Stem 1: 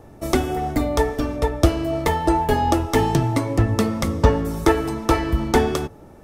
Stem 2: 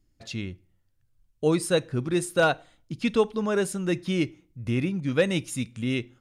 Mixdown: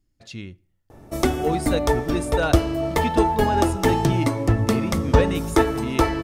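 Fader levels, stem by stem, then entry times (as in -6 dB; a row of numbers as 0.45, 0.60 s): -1.0, -2.5 dB; 0.90, 0.00 s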